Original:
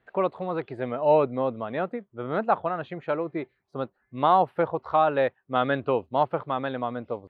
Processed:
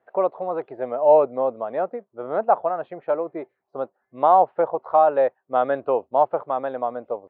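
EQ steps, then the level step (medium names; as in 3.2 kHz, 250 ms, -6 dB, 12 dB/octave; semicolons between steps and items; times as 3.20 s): band-pass filter 660 Hz, Q 1.6; +6.5 dB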